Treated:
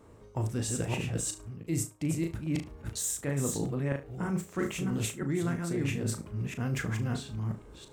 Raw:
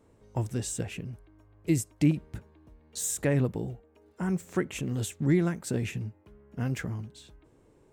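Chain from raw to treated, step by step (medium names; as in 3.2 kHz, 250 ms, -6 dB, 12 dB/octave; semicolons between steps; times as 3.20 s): chunks repeated in reverse 327 ms, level -3.5 dB; peaking EQ 1.2 kHz +5 dB 0.42 oct; flutter echo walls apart 6.2 m, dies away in 0.25 s; reverse; compression 6:1, threshold -34 dBFS, peak gain reduction 15 dB; reverse; trim +5.5 dB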